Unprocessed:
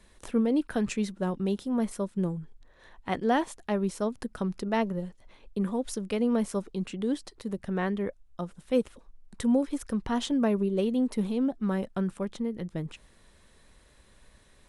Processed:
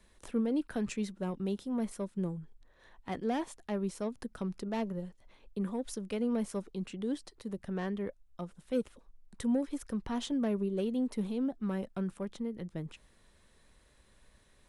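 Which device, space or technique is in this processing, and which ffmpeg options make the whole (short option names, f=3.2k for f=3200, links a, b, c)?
one-band saturation: -filter_complex "[0:a]acrossover=split=470|4000[a][b][c];[b]asoftclip=type=tanh:threshold=-28.5dB[d];[a][d][c]amix=inputs=3:normalize=0,volume=-5.5dB"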